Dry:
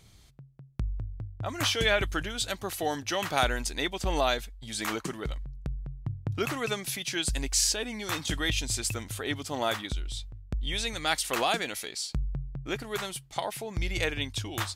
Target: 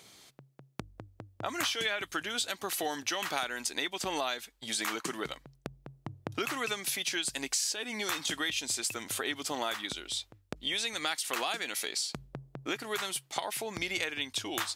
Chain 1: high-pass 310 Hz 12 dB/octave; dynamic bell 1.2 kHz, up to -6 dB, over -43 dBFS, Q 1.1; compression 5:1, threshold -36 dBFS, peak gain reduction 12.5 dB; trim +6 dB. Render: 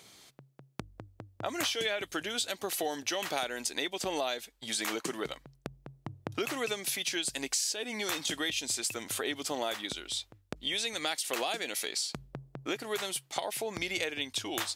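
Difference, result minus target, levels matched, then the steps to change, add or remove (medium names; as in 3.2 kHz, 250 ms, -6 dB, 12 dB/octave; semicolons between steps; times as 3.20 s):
500 Hz band +3.0 dB
change: dynamic bell 550 Hz, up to -6 dB, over -43 dBFS, Q 1.1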